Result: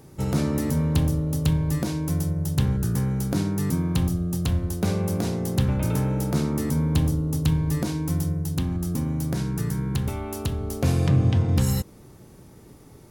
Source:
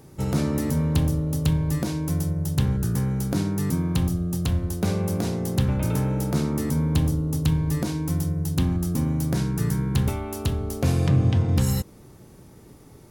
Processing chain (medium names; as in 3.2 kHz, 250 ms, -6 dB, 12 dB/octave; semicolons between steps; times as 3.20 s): 8.36–10.71 s: compression 2:1, threshold -24 dBFS, peak gain reduction 4.5 dB